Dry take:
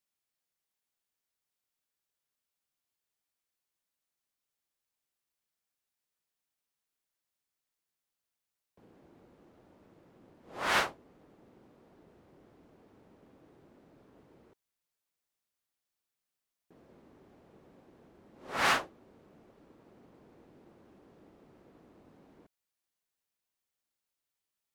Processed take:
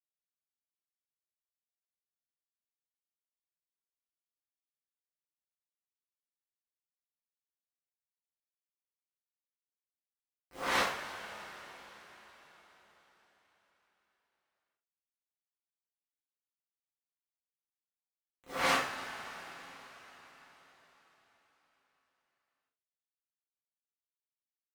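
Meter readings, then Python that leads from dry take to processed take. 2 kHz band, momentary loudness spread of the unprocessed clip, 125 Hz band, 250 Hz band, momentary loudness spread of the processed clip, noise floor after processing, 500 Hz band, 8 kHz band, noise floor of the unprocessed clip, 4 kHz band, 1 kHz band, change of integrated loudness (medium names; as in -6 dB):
-2.0 dB, 19 LU, -2.5 dB, -0.5 dB, 23 LU, under -85 dBFS, 0.0 dB, -0.5 dB, under -85 dBFS, -1.0 dB, -1.0 dB, -4.0 dB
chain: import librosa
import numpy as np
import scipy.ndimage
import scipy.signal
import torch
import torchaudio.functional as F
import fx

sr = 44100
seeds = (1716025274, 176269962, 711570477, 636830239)

y = np.where(np.abs(x) >= 10.0 ** (-43.5 / 20.0), x, 0.0)
y = fx.rev_double_slope(y, sr, seeds[0], early_s=0.36, late_s=4.8, knee_db=-18, drr_db=-5.0)
y = y * librosa.db_to_amplitude(-7.0)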